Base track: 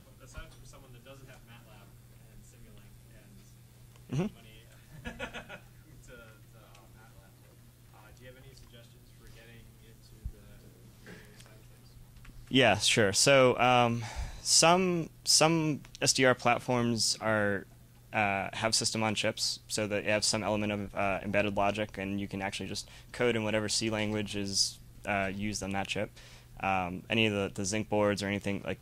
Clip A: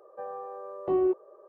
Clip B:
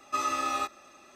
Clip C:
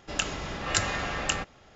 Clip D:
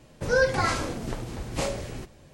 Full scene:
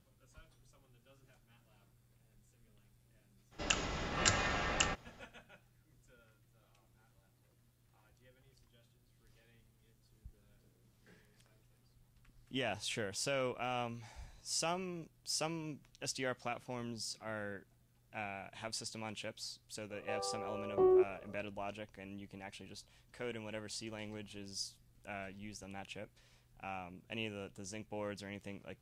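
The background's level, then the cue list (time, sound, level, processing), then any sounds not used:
base track -14.5 dB
3.51 add C -5 dB, fades 0.02 s
19.9 add A -3.5 dB
not used: B, D

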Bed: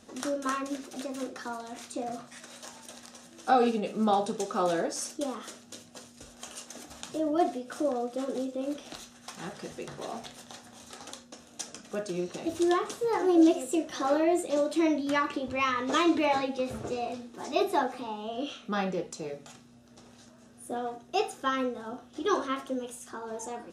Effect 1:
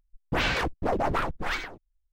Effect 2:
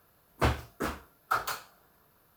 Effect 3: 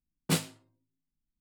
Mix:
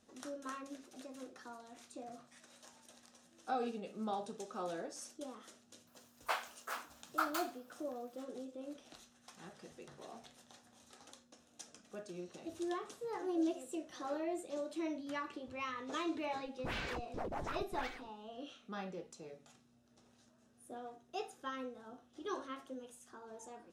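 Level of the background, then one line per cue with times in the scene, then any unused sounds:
bed -14 dB
5.87 add 2 -6 dB + HPF 660 Hz 24 dB/oct
16.32 add 1 -15 dB
not used: 3

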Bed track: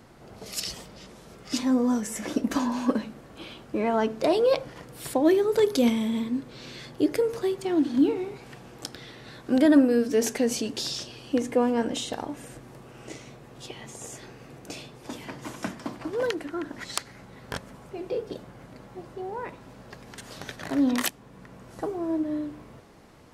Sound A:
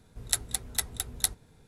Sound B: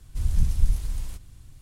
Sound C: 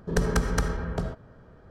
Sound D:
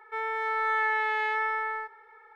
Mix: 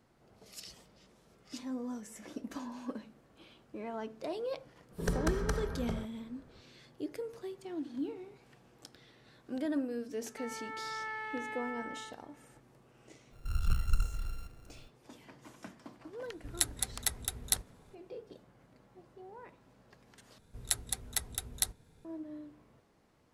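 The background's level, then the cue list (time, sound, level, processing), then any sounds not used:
bed track -16 dB
4.91 add C -8 dB
10.25 add D -13.5 dB
13.3 add B -8.5 dB, fades 0.05 s + sample sorter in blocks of 32 samples
16.28 add A -3 dB
20.38 replace with A -4.5 dB

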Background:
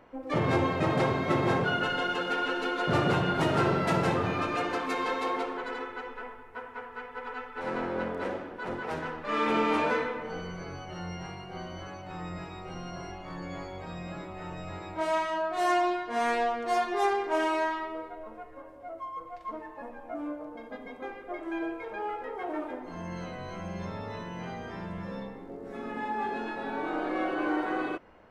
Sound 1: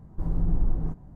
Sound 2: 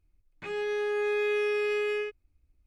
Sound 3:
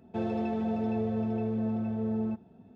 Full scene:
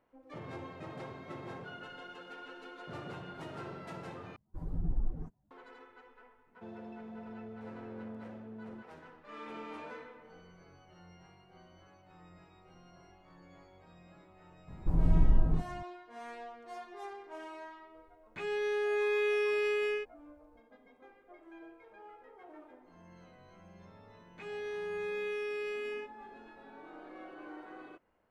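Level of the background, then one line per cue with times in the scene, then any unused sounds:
background -18.5 dB
4.36 replace with 1 -6 dB + per-bin expansion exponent 2
6.47 add 3 -16 dB + HPF 100 Hz
14.68 add 1 -0.5 dB
17.94 add 2 -2.5 dB
23.96 add 2 -9 dB

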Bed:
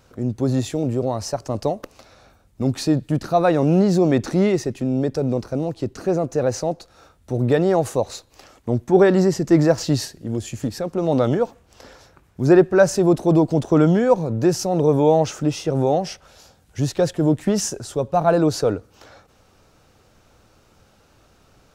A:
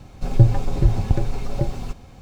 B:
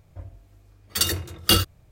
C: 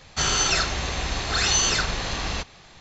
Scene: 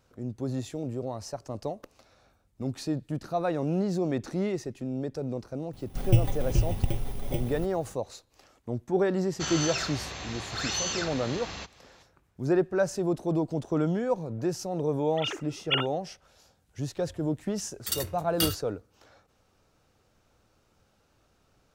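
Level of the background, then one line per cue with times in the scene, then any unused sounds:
bed -11.5 dB
5.73 add A -7.5 dB + FFT order left unsorted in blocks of 16 samples
9.23 add C -9.5 dB + HPF 79 Hz
14.22 add B -10 dB + sine-wave speech
16.91 add B -12 dB + high shelf 8100 Hz +8 dB

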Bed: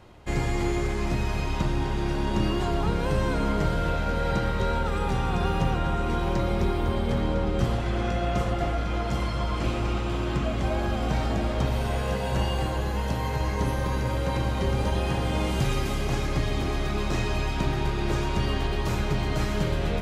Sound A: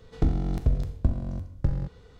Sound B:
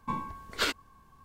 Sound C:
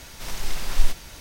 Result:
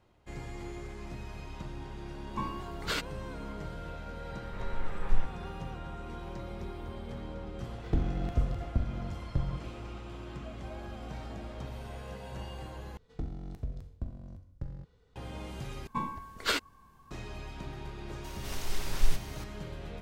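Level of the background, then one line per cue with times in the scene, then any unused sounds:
bed -15.5 dB
2.29 add B -2.5 dB + limiter -19.5 dBFS
4.33 add C -7 dB + LPF 1900 Hz 24 dB/oct
7.71 add A -5.5 dB + decimation joined by straight lines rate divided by 2×
12.97 replace with A -14 dB
15.87 replace with B -0.5 dB
18.24 add C -6.5 dB

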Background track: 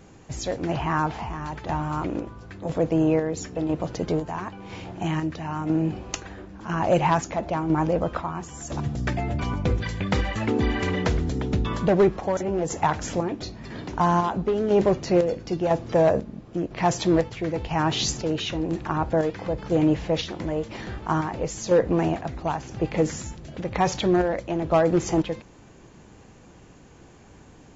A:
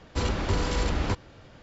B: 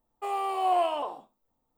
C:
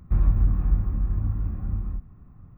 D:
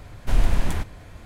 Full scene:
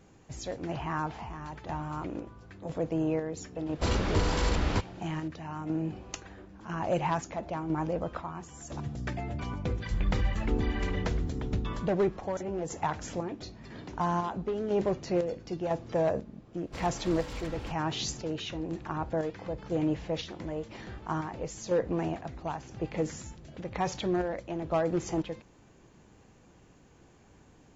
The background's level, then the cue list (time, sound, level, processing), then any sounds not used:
background track -8.5 dB
3.66 add A -1 dB
9.8 add C -9.5 dB
16.57 add A -12.5 dB + minimum comb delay 3.7 ms
not used: B, D

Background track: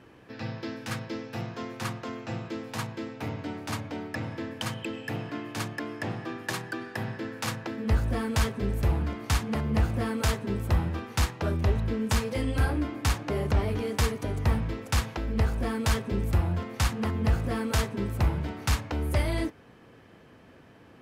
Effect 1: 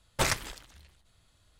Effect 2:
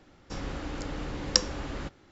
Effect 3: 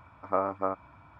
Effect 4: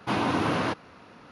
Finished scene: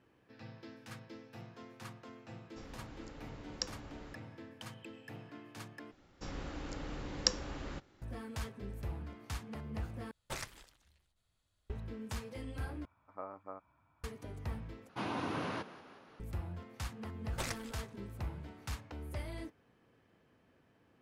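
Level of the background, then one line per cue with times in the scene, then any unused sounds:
background track -15.5 dB
2.26 add 2 -15.5 dB
5.91 replace with 2 -7 dB
10.11 replace with 1 -15 dB
12.85 replace with 3 -17.5 dB
14.89 replace with 4 -12 dB + frequency-shifting echo 0.181 s, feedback 59%, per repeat +39 Hz, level -16 dB
17.19 add 1 -12.5 dB

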